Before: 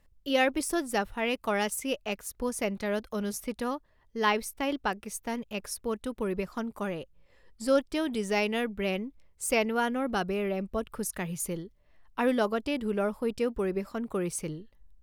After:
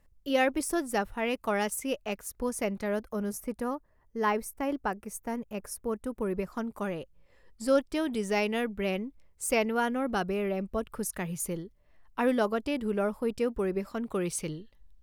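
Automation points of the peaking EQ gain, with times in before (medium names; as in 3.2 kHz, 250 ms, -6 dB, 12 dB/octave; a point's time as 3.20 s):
peaking EQ 3.6 kHz 1.2 oct
2.74 s -5 dB
3.17 s -14.5 dB
6.07 s -14.5 dB
6.72 s -3 dB
13.69 s -3 dB
14.28 s +5.5 dB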